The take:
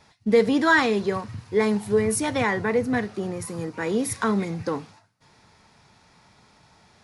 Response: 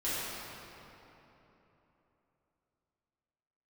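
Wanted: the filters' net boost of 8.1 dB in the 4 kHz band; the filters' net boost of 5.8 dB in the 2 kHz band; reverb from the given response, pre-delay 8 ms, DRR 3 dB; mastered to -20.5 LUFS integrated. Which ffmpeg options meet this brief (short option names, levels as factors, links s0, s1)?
-filter_complex "[0:a]equalizer=f=2000:t=o:g=5.5,equalizer=f=4000:t=o:g=8,asplit=2[s0][s1];[1:a]atrim=start_sample=2205,adelay=8[s2];[s1][s2]afir=irnorm=-1:irlink=0,volume=0.282[s3];[s0][s3]amix=inputs=2:normalize=0,volume=0.891"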